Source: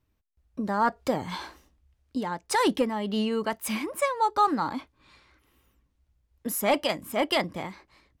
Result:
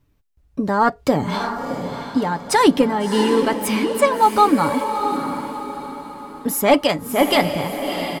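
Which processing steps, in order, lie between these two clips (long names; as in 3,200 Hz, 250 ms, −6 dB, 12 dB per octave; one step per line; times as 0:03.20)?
low-shelf EQ 450 Hz +5 dB
comb filter 7 ms, depth 38%
on a send: feedback delay with all-pass diffusion 671 ms, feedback 41%, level −7 dB
on the sum: level +6.5 dB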